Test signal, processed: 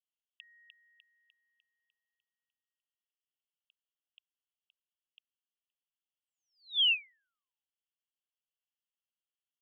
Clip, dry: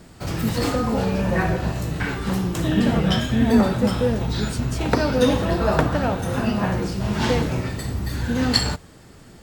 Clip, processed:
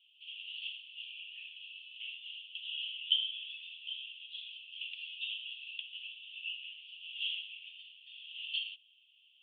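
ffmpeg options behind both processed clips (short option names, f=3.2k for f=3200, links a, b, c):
-af "asuperpass=centerf=3000:order=8:qfactor=4"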